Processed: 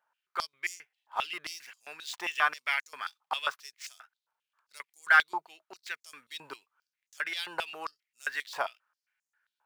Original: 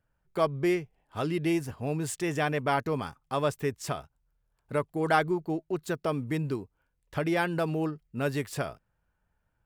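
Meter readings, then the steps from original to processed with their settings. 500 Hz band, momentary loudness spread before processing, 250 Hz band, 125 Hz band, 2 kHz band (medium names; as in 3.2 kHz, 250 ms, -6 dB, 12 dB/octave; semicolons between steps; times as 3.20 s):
-16.5 dB, 9 LU, -26.0 dB, under -35 dB, +6.0 dB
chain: median filter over 5 samples; step-sequenced high-pass 7.5 Hz 910–6600 Hz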